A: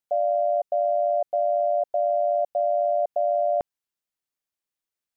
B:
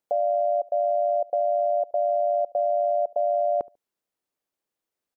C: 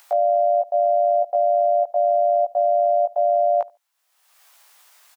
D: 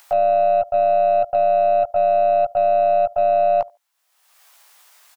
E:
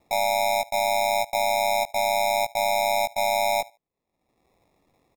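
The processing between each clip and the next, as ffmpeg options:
-filter_complex "[0:a]equalizer=f=430:w=0.46:g=10.5,alimiter=limit=-17dB:level=0:latency=1:release=194,asplit=2[a][b];[b]adelay=72,lowpass=f=920:p=1,volume=-21.5dB,asplit=2[c][d];[d]adelay=72,lowpass=f=920:p=1,volume=0.23[e];[a][c][e]amix=inputs=3:normalize=0"
-filter_complex "[0:a]highpass=f=790:w=0.5412,highpass=f=790:w=1.3066,acompressor=mode=upward:threshold=-45dB:ratio=2.5,asplit=2[a][b];[b]adelay=17,volume=-2dB[c];[a][c]amix=inputs=2:normalize=0,volume=9dB"
-af "aeval=exprs='0.299*(cos(1*acos(clip(val(0)/0.299,-1,1)))-cos(1*PI/2))+0.00299*(cos(2*acos(clip(val(0)/0.299,-1,1)))-cos(2*PI/2))+0.00422*(cos(3*acos(clip(val(0)/0.299,-1,1)))-cos(3*PI/2))+0.00944*(cos(6*acos(clip(val(0)/0.299,-1,1)))-cos(6*PI/2))':c=same,volume=2dB"
-af "lowpass=2.5k,equalizer=f=220:w=1.5:g=5,acrusher=samples=29:mix=1:aa=0.000001,volume=-7dB"

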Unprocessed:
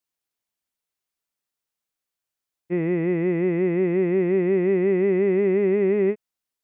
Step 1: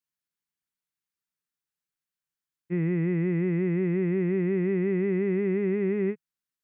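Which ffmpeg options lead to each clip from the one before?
-af "equalizer=f=160:t=o:w=0.67:g=9,equalizer=f=630:t=o:w=0.67:g=-9,equalizer=f=1.6k:t=o:w=0.67:g=4,volume=-6.5dB"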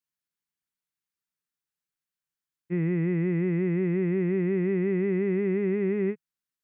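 -af anull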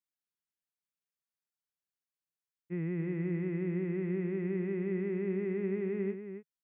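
-filter_complex "[0:a]asplit=2[a][b];[b]adelay=274.1,volume=-8dB,highshelf=f=4k:g=-6.17[c];[a][c]amix=inputs=2:normalize=0,volume=-8.5dB"

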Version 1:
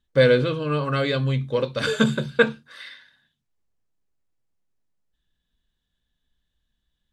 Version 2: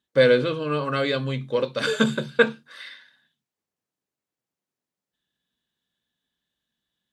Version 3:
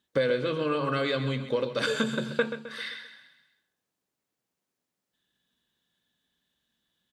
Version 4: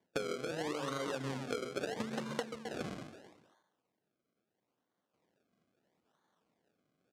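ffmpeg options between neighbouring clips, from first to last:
-af "highpass=180"
-filter_complex "[0:a]bandreject=f=50:t=h:w=6,bandreject=f=100:t=h:w=6,bandreject=f=150:t=h:w=6,acompressor=threshold=-29dB:ratio=4,asplit=2[a][b];[b]aecho=0:1:131|262|393|524|655:0.282|0.132|0.0623|0.0293|0.0138[c];[a][c]amix=inputs=2:normalize=0,volume=3.5dB"
-af "acrusher=samples=33:mix=1:aa=0.000001:lfo=1:lforange=33:lforate=0.76,highpass=160,lowpass=7.8k,acompressor=threshold=-35dB:ratio=12,volume=1dB"

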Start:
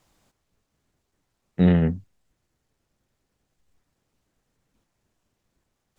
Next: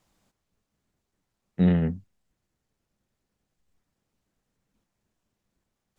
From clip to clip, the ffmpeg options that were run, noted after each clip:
-af "equalizer=f=200:w=5.2:g=5.5,volume=-5dB"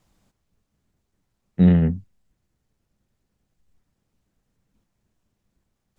-af "lowshelf=f=210:g=7.5,volume=1.5dB"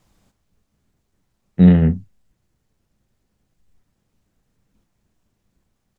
-filter_complex "[0:a]asplit=2[a][b];[b]adelay=38,volume=-12.5dB[c];[a][c]amix=inputs=2:normalize=0,volume=4dB"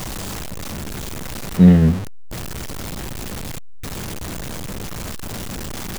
-af "aeval=exprs='val(0)+0.5*0.075*sgn(val(0))':c=same"

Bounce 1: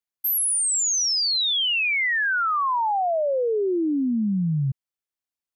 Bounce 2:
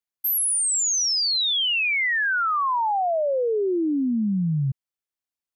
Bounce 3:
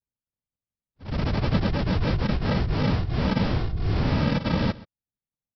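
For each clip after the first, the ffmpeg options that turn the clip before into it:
-af anull
-af "aresample=11025,acrusher=samples=31:mix=1:aa=0.000001,aresample=44100,afftfilt=real='hypot(re,im)*cos(2*PI*random(0))':imag='hypot(re,im)*sin(2*PI*random(1))':win_size=512:overlap=0.75,aecho=1:1:127:0.106,volume=6dB"

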